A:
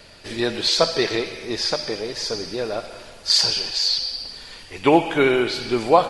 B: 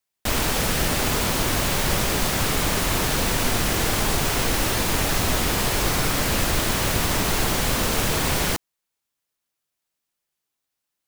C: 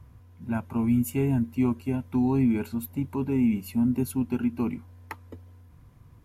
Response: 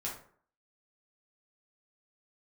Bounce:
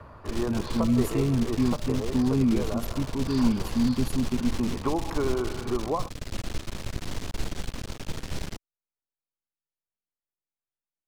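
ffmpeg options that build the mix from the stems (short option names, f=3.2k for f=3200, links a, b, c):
-filter_complex "[0:a]lowpass=f=1.1k:t=q:w=6.9,acompressor=threshold=-27dB:ratio=2,volume=-0.5dB[a];[1:a]lowshelf=f=90:g=7.5,aeval=exprs='max(val(0),0)':c=same,adynamicsmooth=sensitivity=6:basefreq=1.6k,volume=-8.5dB[b];[2:a]lowpass=10k,volume=0dB[c];[a][b][c]amix=inputs=3:normalize=0,acrossover=split=460|3000[d][e][f];[e]acompressor=threshold=-55dB:ratio=1.5[g];[d][g][f]amix=inputs=3:normalize=0"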